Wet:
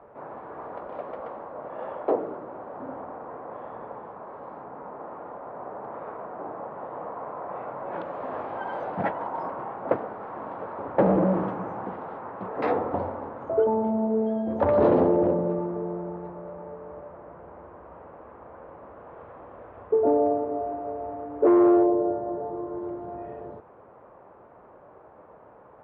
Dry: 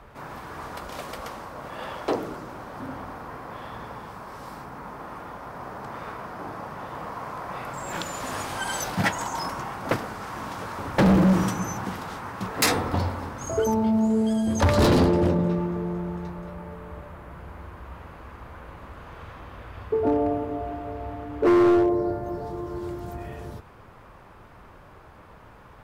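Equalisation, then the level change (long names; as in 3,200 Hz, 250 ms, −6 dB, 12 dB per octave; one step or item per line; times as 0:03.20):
resonant band-pass 570 Hz, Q 1.4
high-frequency loss of the air 420 metres
+5.5 dB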